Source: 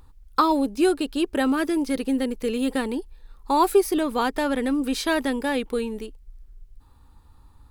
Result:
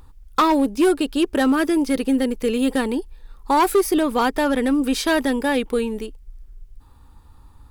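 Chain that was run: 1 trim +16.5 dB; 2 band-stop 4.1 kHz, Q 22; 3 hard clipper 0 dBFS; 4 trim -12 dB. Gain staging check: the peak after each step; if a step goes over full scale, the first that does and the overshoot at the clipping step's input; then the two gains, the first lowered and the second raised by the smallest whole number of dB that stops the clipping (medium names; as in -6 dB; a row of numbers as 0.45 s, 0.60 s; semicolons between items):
+8.5 dBFS, +8.0 dBFS, 0.0 dBFS, -12.0 dBFS; step 1, 8.0 dB; step 1 +8.5 dB, step 4 -4 dB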